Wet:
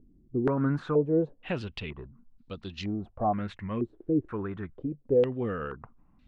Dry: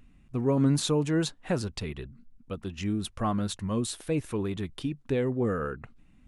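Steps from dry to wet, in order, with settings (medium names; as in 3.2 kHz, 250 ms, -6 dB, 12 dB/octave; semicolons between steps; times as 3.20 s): step-sequenced low-pass 2.1 Hz 360–4200 Hz; trim -4 dB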